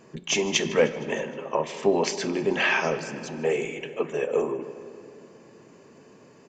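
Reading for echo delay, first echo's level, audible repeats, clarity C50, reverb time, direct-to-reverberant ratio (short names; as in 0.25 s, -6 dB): 0.155 s, -19.0 dB, 4, 12.0 dB, 2.8 s, 10.5 dB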